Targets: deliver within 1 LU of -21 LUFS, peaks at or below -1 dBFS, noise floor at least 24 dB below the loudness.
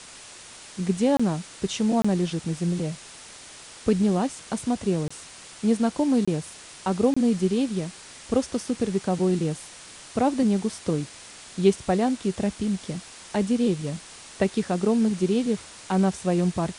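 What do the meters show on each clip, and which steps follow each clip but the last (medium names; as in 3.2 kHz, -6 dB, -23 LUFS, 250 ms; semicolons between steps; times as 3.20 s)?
dropouts 5; longest dropout 25 ms; noise floor -45 dBFS; noise floor target -50 dBFS; loudness -25.5 LUFS; peak level -7.5 dBFS; loudness target -21.0 LUFS
-> interpolate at 1.17/2.02/5.08/6.25/7.14 s, 25 ms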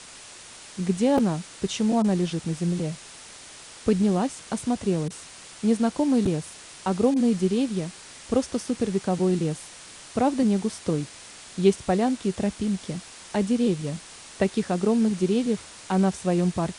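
dropouts 0; noise floor -45 dBFS; noise floor target -49 dBFS
-> noise reduction 6 dB, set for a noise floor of -45 dBFS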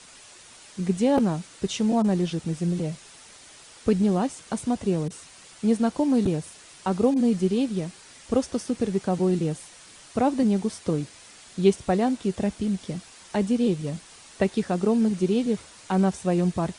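noise floor -49 dBFS; loudness -25.0 LUFS; peak level -7.5 dBFS; loudness target -21.0 LUFS
-> trim +4 dB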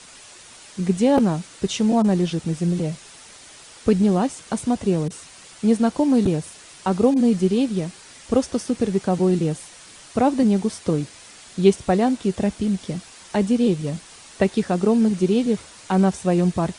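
loudness -21.0 LUFS; peak level -3.5 dBFS; noise floor -45 dBFS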